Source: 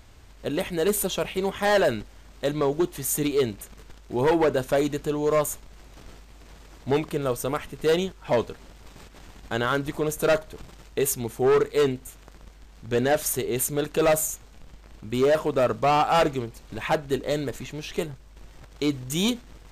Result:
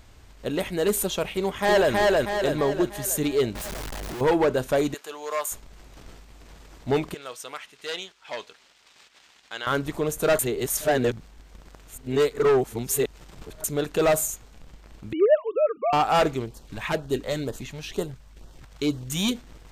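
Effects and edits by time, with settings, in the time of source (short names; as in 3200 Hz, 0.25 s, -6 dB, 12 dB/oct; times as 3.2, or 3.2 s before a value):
1.36–1.93 echo throw 0.32 s, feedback 50%, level -0.5 dB
3.55–4.21 infinite clipping
4.94–5.52 HPF 860 Hz
7.14–9.67 band-pass 3600 Hz, Q 0.7
10.39–13.64 reverse
15.13–15.93 sine-wave speech
16.46–19.35 LFO notch sine 2.1 Hz 320–2400 Hz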